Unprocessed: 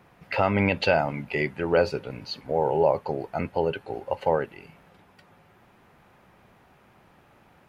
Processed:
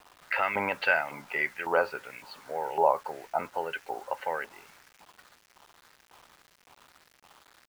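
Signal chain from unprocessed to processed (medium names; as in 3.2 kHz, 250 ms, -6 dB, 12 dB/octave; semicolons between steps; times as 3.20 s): LFO band-pass saw up 1.8 Hz 910–2300 Hz; bit crusher 10-bit; trim +6.5 dB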